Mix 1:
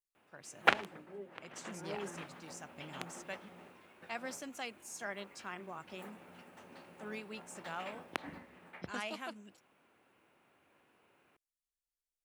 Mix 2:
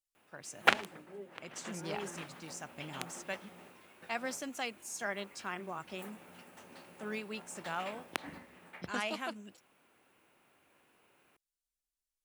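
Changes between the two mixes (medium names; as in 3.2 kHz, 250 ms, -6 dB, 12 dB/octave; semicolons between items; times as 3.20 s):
speech +4.5 dB; background: add treble shelf 4.4 kHz +9.5 dB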